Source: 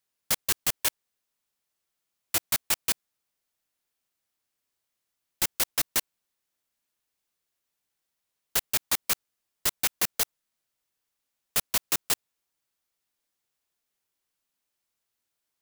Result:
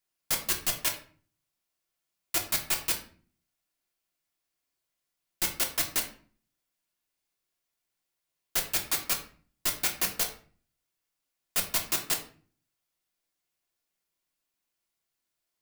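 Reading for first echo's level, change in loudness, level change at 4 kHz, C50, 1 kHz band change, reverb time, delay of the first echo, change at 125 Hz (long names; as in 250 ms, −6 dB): no echo audible, −1.5 dB, −1.5 dB, 9.5 dB, −1.0 dB, 0.45 s, no echo audible, −0.5 dB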